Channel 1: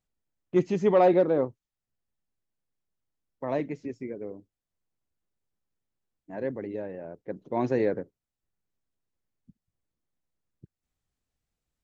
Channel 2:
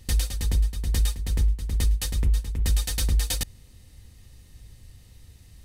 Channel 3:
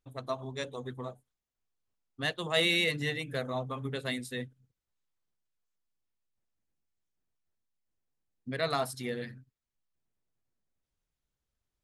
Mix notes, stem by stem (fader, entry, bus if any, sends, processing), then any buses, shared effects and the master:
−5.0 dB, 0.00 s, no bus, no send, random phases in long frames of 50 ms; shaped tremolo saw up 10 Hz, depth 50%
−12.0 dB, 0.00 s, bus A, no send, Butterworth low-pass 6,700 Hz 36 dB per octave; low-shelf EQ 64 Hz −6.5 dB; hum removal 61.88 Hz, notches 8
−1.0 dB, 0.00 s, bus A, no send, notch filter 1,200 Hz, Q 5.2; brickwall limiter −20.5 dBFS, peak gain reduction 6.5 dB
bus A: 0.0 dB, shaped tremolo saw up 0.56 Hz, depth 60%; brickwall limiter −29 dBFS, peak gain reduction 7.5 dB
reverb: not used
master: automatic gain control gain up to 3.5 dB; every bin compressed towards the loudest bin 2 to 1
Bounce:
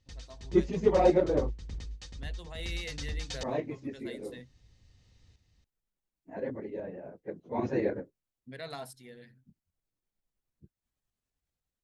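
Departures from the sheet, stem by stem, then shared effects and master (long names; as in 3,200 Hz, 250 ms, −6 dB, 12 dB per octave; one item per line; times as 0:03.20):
stem 3 −1.0 dB → −11.5 dB
master: missing every bin compressed towards the loudest bin 2 to 1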